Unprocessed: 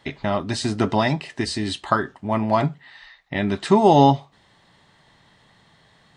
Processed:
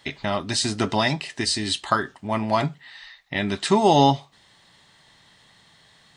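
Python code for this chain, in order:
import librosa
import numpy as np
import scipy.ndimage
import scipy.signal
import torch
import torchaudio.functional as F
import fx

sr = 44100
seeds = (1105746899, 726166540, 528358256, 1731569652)

y = fx.high_shelf(x, sr, hz=2200.0, db=11.0)
y = F.gain(torch.from_numpy(y), -3.5).numpy()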